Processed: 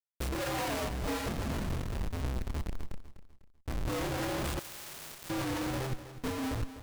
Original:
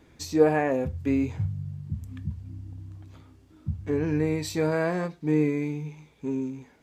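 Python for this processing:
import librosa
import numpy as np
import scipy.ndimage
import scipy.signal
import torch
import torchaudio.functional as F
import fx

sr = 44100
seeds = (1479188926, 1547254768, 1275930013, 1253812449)

y = fx.partial_stretch(x, sr, pct=126)
y = scipy.signal.sosfilt(scipy.signal.cheby1(2, 1.0, [940.0, 3300.0], 'bandstop', fs=sr, output='sos'), y)
y = fx.schmitt(y, sr, flips_db=-38.0)
y = fx.leveller(y, sr, passes=2)
y = fx.chorus_voices(y, sr, voices=2, hz=1.1, base_ms=28, depth_ms=3.0, mix_pct=50)
y = fx.comb(y, sr, ms=2.1, depth=0.49, at=(1.02, 1.68))
y = 10.0 ** (-28.0 / 20.0) * (np.abs((y / 10.0 ** (-28.0 / 20.0) + 3.0) % 4.0 - 2.0) - 1.0)
y = fx.echo_feedback(y, sr, ms=249, feedback_pct=37, wet_db=-13.0)
y = fx.spectral_comp(y, sr, ratio=4.0, at=(4.59, 5.3))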